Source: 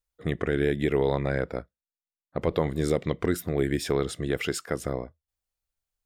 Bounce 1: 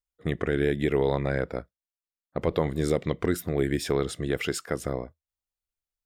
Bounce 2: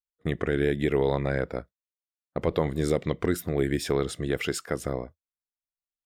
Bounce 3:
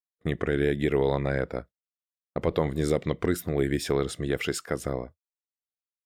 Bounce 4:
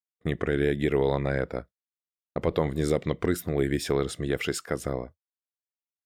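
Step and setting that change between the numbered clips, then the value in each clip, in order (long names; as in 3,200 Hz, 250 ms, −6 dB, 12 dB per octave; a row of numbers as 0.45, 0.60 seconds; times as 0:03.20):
noise gate, range: −7, −22, −39, −52 decibels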